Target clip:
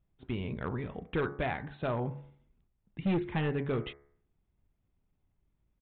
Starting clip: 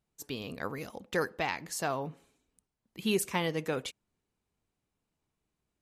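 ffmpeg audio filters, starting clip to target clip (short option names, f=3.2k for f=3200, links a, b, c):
-af "aemphasis=mode=reproduction:type=bsi,bandreject=f=79.25:t=h:w=4,bandreject=f=158.5:t=h:w=4,bandreject=f=237.75:t=h:w=4,bandreject=f=317:t=h:w=4,bandreject=f=396.25:t=h:w=4,bandreject=f=475.5:t=h:w=4,bandreject=f=554.75:t=h:w=4,bandreject=f=634:t=h:w=4,bandreject=f=713.25:t=h:w=4,bandreject=f=792.5:t=h:w=4,bandreject=f=871.75:t=h:w=4,bandreject=f=951:t=h:w=4,bandreject=f=1.03025k:t=h:w=4,bandreject=f=1.1095k:t=h:w=4,bandreject=f=1.18875k:t=h:w=4,bandreject=f=1.268k:t=h:w=4,bandreject=f=1.34725k:t=h:w=4,bandreject=f=1.4265k:t=h:w=4,bandreject=f=1.50575k:t=h:w=4,bandreject=f=1.585k:t=h:w=4,bandreject=f=1.66425k:t=h:w=4,bandreject=f=1.7435k:t=h:w=4,bandreject=f=1.82275k:t=h:w=4,bandreject=f=1.902k:t=h:w=4,bandreject=f=1.98125k:t=h:w=4,bandreject=f=2.0605k:t=h:w=4,bandreject=f=2.13975k:t=h:w=4,bandreject=f=2.219k:t=h:w=4,bandreject=f=2.29825k:t=h:w=4,bandreject=f=2.3775k:t=h:w=4,bandreject=f=2.45675k:t=h:w=4,bandreject=f=2.536k:t=h:w=4,asetrate=39289,aresample=44100,atempo=1.12246,aresample=8000,asoftclip=type=hard:threshold=-25dB,aresample=44100"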